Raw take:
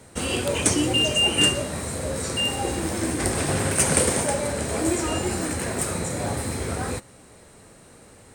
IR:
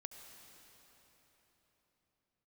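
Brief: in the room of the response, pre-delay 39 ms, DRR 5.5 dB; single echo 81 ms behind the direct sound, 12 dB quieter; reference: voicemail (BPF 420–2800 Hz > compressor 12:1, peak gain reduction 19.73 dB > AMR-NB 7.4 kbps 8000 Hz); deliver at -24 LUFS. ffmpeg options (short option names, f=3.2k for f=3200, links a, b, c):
-filter_complex "[0:a]aecho=1:1:81:0.251,asplit=2[a][b];[1:a]atrim=start_sample=2205,adelay=39[c];[b][c]afir=irnorm=-1:irlink=0,volume=-1dB[d];[a][d]amix=inputs=2:normalize=0,highpass=420,lowpass=2.8k,acompressor=threshold=-37dB:ratio=12,volume=19.5dB" -ar 8000 -c:a libopencore_amrnb -b:a 7400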